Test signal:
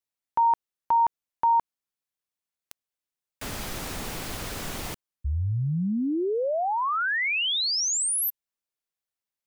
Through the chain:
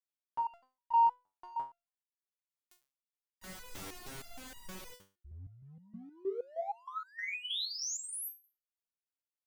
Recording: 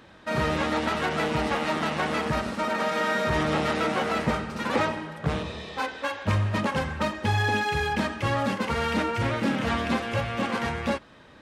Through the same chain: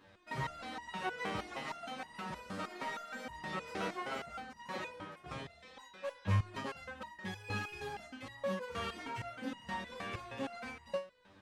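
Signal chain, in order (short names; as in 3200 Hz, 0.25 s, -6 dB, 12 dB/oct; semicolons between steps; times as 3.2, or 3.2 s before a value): in parallel at -10.5 dB: hard clip -25.5 dBFS; on the sum: stepped resonator 6.4 Hz 97–950 Hz; gain -2.5 dB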